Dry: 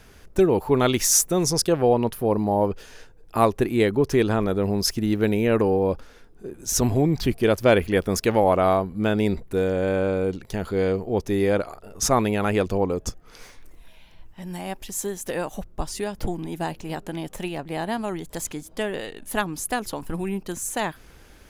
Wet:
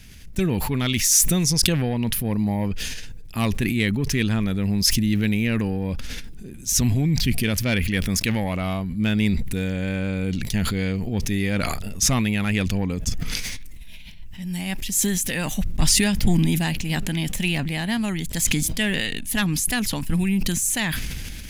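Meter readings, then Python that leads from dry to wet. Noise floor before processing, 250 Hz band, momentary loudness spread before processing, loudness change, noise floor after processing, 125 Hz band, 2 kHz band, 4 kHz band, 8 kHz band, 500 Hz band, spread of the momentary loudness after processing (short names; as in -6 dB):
-50 dBFS, +2.0 dB, 13 LU, +1.0 dB, -36 dBFS, +5.0 dB, +4.5 dB, +6.5 dB, +4.5 dB, -10.0 dB, 10 LU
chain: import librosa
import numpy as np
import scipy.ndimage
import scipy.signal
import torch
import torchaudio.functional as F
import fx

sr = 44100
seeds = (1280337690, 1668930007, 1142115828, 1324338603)

p1 = fx.rider(x, sr, range_db=10, speed_s=0.5)
p2 = x + (p1 * librosa.db_to_amplitude(2.5))
p3 = fx.dynamic_eq(p2, sr, hz=1500.0, q=0.75, threshold_db=-28.0, ratio=4.0, max_db=5)
p4 = 10.0 ** (-0.5 / 20.0) * np.tanh(p3 / 10.0 ** (-0.5 / 20.0))
p5 = fx.band_shelf(p4, sr, hz=700.0, db=-15.5, octaves=2.5)
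p6 = fx.sustainer(p5, sr, db_per_s=21.0)
y = p6 * librosa.db_to_amplitude(-3.5)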